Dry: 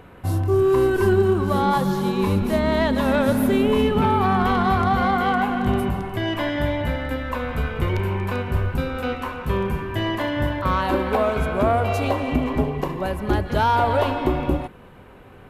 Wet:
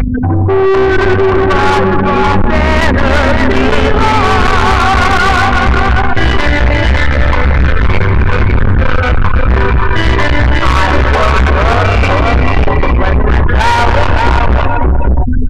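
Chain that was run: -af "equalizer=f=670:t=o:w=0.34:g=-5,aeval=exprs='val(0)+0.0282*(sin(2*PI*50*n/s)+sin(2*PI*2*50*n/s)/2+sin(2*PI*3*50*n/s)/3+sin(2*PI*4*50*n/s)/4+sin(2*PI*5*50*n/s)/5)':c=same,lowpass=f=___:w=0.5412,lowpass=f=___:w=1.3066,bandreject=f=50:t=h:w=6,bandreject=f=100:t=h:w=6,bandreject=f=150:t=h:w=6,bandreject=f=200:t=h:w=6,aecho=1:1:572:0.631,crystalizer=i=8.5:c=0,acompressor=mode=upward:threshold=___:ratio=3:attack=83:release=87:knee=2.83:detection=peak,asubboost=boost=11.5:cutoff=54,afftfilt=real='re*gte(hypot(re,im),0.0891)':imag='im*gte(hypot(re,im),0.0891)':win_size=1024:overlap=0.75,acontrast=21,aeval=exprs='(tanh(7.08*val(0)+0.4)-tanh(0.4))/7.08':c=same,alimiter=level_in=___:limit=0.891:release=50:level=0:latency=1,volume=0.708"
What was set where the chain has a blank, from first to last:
2300, 2300, 0.0316, 15.8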